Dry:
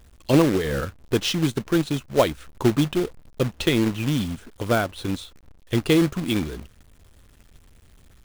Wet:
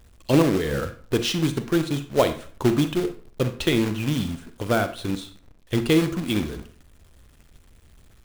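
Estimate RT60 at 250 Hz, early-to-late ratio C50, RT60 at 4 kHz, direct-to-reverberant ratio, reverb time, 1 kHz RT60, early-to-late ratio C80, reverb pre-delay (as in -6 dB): 0.50 s, 11.5 dB, 0.35 s, 9.5 dB, 0.45 s, 0.45 s, 16.5 dB, 38 ms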